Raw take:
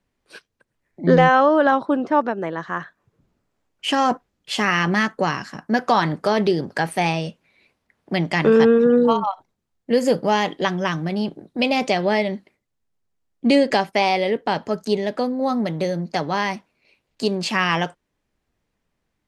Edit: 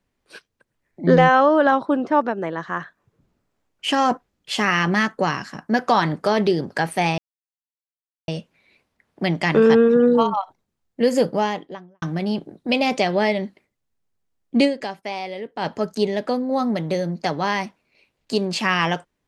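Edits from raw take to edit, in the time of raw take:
7.18 s: insert silence 1.10 s
10.08–10.92 s: studio fade out
13.54–14.55 s: dip -10.5 dB, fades 0.42 s exponential

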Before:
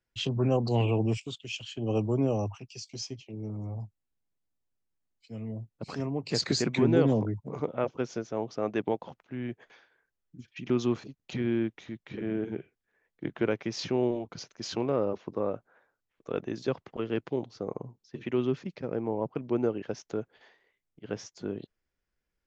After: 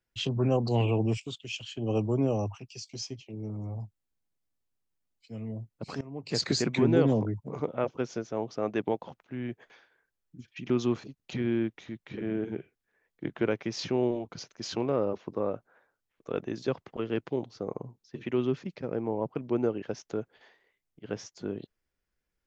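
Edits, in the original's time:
6.01–6.40 s: fade in, from -19 dB

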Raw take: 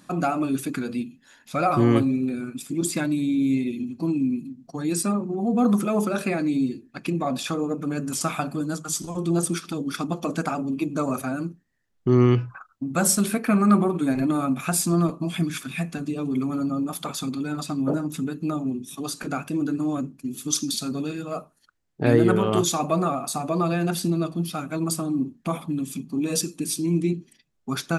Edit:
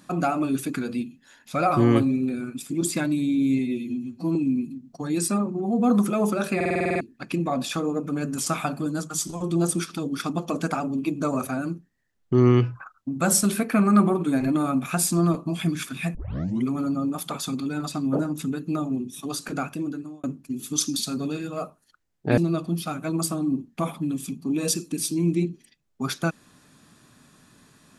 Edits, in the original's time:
3.59–4.10 s: stretch 1.5×
6.30 s: stutter in place 0.05 s, 9 plays
15.89 s: tape start 0.50 s
19.36–19.98 s: fade out
22.12–24.05 s: delete

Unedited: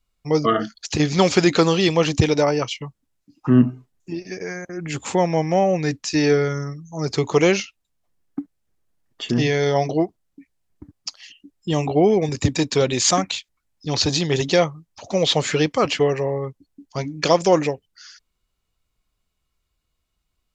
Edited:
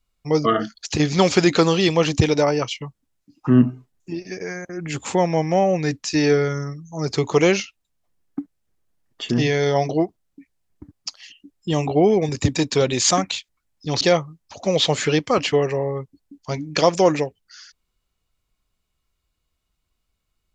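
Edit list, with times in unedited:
14.01–14.48 s: delete

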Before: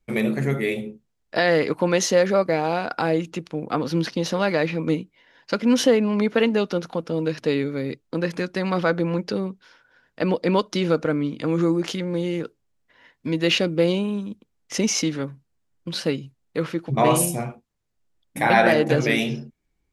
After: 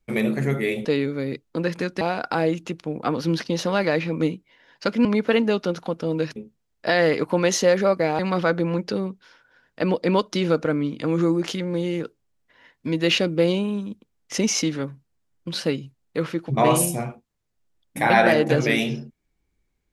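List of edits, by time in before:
0.85–2.68 s: swap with 7.43–8.59 s
5.72–6.12 s: delete

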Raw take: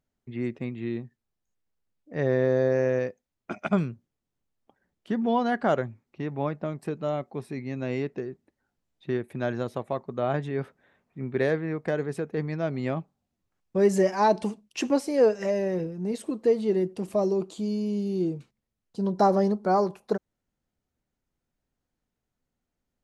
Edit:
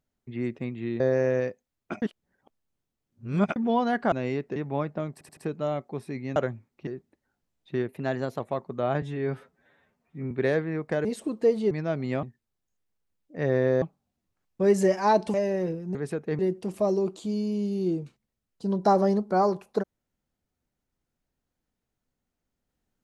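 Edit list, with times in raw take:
1.00–2.59 s: move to 12.97 s
3.61–5.15 s: reverse
5.71–6.22 s: swap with 7.78–8.22 s
6.79 s: stutter 0.08 s, 4 plays
9.23–9.79 s: speed 108%
10.41–11.27 s: stretch 1.5×
12.01–12.45 s: swap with 16.07–16.73 s
14.49–15.46 s: delete

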